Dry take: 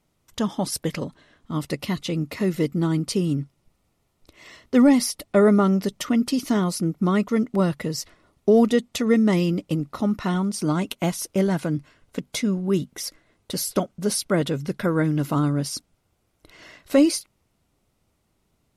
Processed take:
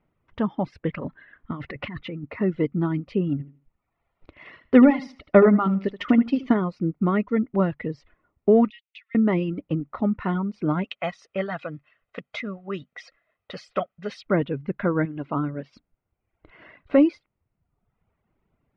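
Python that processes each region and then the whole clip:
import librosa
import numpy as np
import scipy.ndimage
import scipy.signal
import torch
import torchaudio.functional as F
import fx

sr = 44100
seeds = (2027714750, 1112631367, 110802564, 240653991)

y = fx.chain(x, sr, fx.peak_eq(hz=1700.0, db=7.5, octaves=1.0),
    fx.over_compress(threshold_db=-30.0, ratio=-1.0), at=(0.97, 2.24))
y = fx.chain(y, sr, fx.high_shelf(hz=3100.0, db=7.0),
    fx.transient(attack_db=5, sustain_db=-1),
    fx.echo_feedback(ms=77, feedback_pct=26, wet_db=-7.5), at=(3.32, 6.54))
y = fx.chain(y, sr, fx.cheby1_highpass(hz=2500.0, order=4),
    fx.air_absorb(metres=110.0), at=(8.7, 9.15))
y = fx.chain(y, sr, fx.lowpass(hz=8300.0, slope=12),
    fx.tilt_eq(slope=4.0),
    fx.comb(ms=1.6, depth=0.5), at=(10.84, 14.27))
y = fx.chain(y, sr, fx.lowpass(hz=2800.0, slope=6),
    fx.low_shelf(hz=170.0, db=-8.5), at=(15.05, 15.73))
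y = scipy.signal.sosfilt(scipy.signal.butter(4, 2400.0, 'lowpass', fs=sr, output='sos'), y)
y = fx.dereverb_blind(y, sr, rt60_s=1.0)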